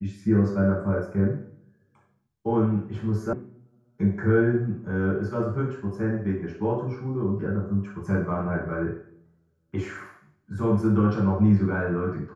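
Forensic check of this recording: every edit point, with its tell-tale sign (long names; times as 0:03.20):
0:03.33: cut off before it has died away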